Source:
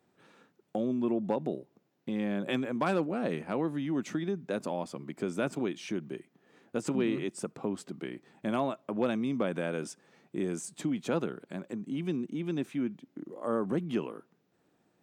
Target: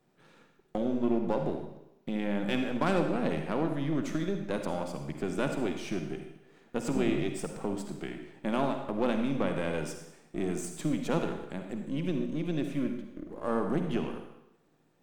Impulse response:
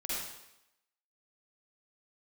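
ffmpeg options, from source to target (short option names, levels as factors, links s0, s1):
-filter_complex "[0:a]aeval=exprs='if(lt(val(0),0),0.447*val(0),val(0))':c=same,equalizer=f=150:t=o:w=0.3:g=7.5,asplit=2[s0][s1];[1:a]atrim=start_sample=2205[s2];[s1][s2]afir=irnorm=-1:irlink=0,volume=0.501[s3];[s0][s3]amix=inputs=2:normalize=0"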